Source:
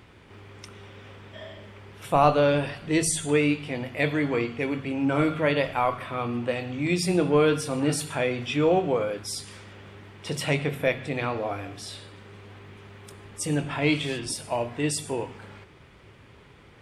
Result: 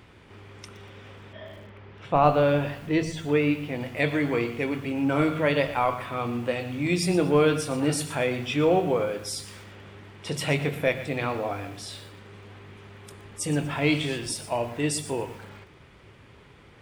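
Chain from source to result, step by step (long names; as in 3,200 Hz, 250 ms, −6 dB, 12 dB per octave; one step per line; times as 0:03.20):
0:01.33–0:03.79: high-frequency loss of the air 190 metres
feedback echo at a low word length 119 ms, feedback 35%, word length 7 bits, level −14 dB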